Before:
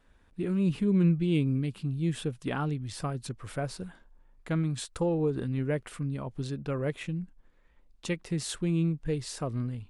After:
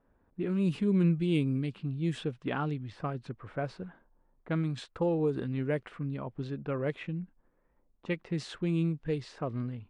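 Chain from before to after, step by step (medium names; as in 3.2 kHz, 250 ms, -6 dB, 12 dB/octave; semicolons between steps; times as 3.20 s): level-controlled noise filter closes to 920 Hz, open at -22 dBFS; bass shelf 83 Hz -11.5 dB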